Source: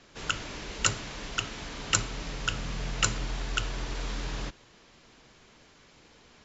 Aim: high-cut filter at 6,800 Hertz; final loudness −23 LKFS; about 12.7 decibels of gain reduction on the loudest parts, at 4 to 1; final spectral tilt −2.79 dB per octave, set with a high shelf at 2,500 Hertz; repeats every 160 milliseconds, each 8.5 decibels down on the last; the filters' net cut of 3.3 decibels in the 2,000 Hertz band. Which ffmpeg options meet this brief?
ffmpeg -i in.wav -af "lowpass=6800,equalizer=frequency=2000:width_type=o:gain=-8.5,highshelf=frequency=2500:gain=5.5,acompressor=threshold=-35dB:ratio=4,aecho=1:1:160|320|480|640:0.376|0.143|0.0543|0.0206,volume=16dB" out.wav

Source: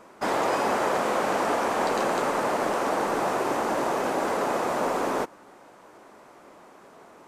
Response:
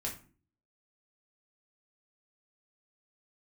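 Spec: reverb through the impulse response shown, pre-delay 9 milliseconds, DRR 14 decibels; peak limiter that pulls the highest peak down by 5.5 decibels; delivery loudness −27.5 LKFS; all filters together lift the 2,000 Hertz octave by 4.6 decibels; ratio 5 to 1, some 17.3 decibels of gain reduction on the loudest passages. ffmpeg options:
-filter_complex "[0:a]equalizer=frequency=2000:width_type=o:gain=6,acompressor=threshold=-41dB:ratio=5,alimiter=level_in=9.5dB:limit=-24dB:level=0:latency=1,volume=-9.5dB,asplit=2[link_01][link_02];[1:a]atrim=start_sample=2205,adelay=9[link_03];[link_02][link_03]afir=irnorm=-1:irlink=0,volume=-15dB[link_04];[link_01][link_04]amix=inputs=2:normalize=0,volume=16dB"

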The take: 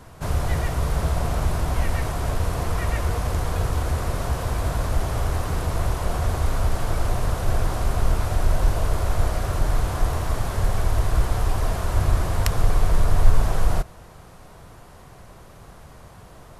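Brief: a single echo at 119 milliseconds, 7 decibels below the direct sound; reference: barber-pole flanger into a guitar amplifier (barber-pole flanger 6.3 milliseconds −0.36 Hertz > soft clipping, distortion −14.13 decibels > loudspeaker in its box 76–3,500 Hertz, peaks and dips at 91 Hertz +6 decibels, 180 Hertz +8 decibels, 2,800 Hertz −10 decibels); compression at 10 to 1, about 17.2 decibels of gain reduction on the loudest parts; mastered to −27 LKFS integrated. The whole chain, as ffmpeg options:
ffmpeg -i in.wav -filter_complex "[0:a]acompressor=threshold=-24dB:ratio=10,aecho=1:1:119:0.447,asplit=2[link_01][link_02];[link_02]adelay=6.3,afreqshift=-0.36[link_03];[link_01][link_03]amix=inputs=2:normalize=1,asoftclip=threshold=-27dB,highpass=76,equalizer=frequency=91:width_type=q:width=4:gain=6,equalizer=frequency=180:width_type=q:width=4:gain=8,equalizer=frequency=2800:width_type=q:width=4:gain=-10,lowpass=frequency=3500:width=0.5412,lowpass=frequency=3500:width=1.3066,volume=10dB" out.wav

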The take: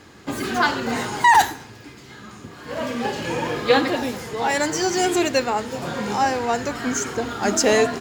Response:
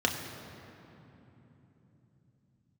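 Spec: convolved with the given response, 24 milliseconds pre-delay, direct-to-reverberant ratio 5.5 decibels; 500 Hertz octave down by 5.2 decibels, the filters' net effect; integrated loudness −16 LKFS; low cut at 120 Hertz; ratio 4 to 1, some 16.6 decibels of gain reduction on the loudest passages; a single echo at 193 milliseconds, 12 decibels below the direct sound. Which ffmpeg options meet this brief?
-filter_complex "[0:a]highpass=120,equalizer=frequency=500:width_type=o:gain=-6.5,acompressor=threshold=-32dB:ratio=4,aecho=1:1:193:0.251,asplit=2[link_01][link_02];[1:a]atrim=start_sample=2205,adelay=24[link_03];[link_02][link_03]afir=irnorm=-1:irlink=0,volume=-16dB[link_04];[link_01][link_04]amix=inputs=2:normalize=0,volume=16.5dB"

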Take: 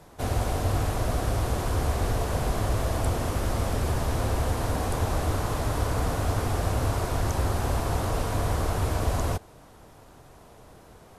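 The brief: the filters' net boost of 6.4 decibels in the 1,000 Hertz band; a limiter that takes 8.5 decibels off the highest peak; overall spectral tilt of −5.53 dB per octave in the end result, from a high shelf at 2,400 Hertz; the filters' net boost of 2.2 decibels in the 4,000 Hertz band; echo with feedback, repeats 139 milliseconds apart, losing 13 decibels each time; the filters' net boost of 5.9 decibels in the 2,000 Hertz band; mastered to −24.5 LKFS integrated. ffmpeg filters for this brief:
ffmpeg -i in.wav -af "equalizer=frequency=1000:width_type=o:gain=7.5,equalizer=frequency=2000:width_type=o:gain=6,highshelf=frequency=2400:gain=-4.5,equalizer=frequency=4000:width_type=o:gain=4.5,alimiter=limit=-19.5dB:level=0:latency=1,aecho=1:1:139|278|417:0.224|0.0493|0.0108,volume=4.5dB" out.wav

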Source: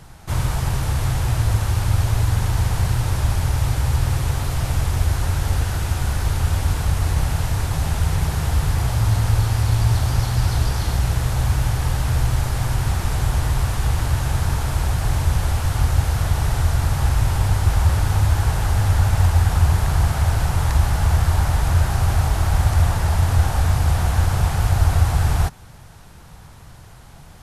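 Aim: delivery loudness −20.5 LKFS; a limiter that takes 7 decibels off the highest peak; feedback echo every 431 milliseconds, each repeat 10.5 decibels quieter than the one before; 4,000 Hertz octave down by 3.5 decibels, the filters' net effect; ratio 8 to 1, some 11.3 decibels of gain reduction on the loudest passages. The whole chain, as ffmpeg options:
ffmpeg -i in.wav -af "equalizer=frequency=4000:width_type=o:gain=-4.5,acompressor=threshold=-23dB:ratio=8,alimiter=limit=-22dB:level=0:latency=1,aecho=1:1:431|862|1293:0.299|0.0896|0.0269,volume=11dB" out.wav

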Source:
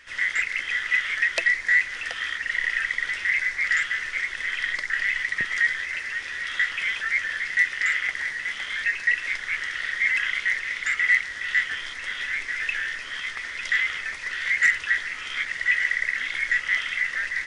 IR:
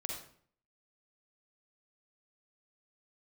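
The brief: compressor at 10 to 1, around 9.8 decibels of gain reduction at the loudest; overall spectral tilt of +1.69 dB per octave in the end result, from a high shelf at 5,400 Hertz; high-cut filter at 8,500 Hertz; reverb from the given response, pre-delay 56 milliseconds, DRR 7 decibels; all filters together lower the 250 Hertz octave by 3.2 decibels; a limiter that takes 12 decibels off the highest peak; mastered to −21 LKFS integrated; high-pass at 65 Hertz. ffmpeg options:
-filter_complex "[0:a]highpass=65,lowpass=8500,equalizer=frequency=250:width_type=o:gain=-4.5,highshelf=frequency=5400:gain=8,acompressor=threshold=-25dB:ratio=10,alimiter=limit=-21.5dB:level=0:latency=1,asplit=2[link_01][link_02];[1:a]atrim=start_sample=2205,adelay=56[link_03];[link_02][link_03]afir=irnorm=-1:irlink=0,volume=-7.5dB[link_04];[link_01][link_04]amix=inputs=2:normalize=0,volume=8dB"

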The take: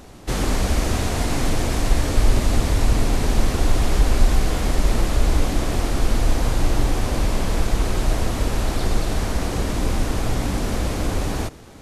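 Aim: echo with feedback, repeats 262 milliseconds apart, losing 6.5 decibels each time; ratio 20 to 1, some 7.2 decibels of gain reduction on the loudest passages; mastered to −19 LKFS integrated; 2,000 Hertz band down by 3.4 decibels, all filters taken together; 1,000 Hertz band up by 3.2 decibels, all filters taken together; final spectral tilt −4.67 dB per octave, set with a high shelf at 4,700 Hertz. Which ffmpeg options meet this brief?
ffmpeg -i in.wav -af "equalizer=frequency=1000:width_type=o:gain=5.5,equalizer=frequency=2000:width_type=o:gain=-7.5,highshelf=frequency=4700:gain=7,acompressor=threshold=-16dB:ratio=20,aecho=1:1:262|524|786|1048|1310|1572:0.473|0.222|0.105|0.0491|0.0231|0.0109,volume=5dB" out.wav

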